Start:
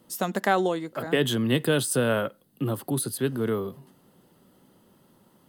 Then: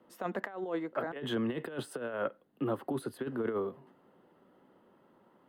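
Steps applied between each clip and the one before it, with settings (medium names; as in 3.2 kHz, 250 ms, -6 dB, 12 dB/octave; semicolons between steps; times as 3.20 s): three-band isolator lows -13 dB, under 260 Hz, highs -23 dB, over 2.5 kHz; compressor with a negative ratio -29 dBFS, ratio -0.5; trim -4 dB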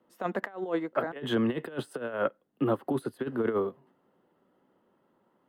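upward expansion 1.5:1, over -53 dBFS; trim +6.5 dB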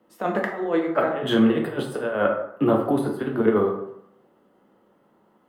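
plate-style reverb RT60 0.74 s, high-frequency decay 0.55×, DRR 1 dB; trim +5.5 dB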